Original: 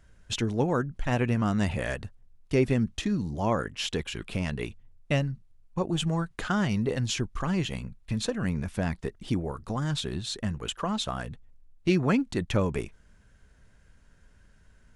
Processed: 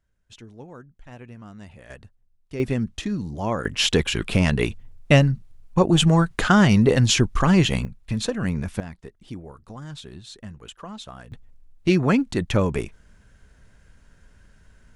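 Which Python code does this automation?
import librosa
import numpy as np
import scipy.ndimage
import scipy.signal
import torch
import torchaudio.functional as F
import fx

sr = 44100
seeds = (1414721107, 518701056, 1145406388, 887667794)

y = fx.gain(x, sr, db=fx.steps((0.0, -16.0), (1.9, -8.5), (2.6, 1.0), (3.65, 11.0), (7.85, 4.0), (8.8, -8.0), (11.32, 5.0)))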